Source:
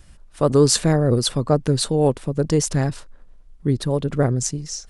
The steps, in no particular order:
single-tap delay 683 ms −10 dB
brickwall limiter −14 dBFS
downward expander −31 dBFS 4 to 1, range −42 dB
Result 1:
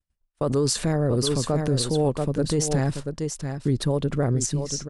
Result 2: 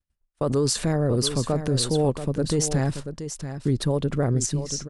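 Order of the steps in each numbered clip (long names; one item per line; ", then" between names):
downward expander, then single-tap delay, then brickwall limiter
downward expander, then brickwall limiter, then single-tap delay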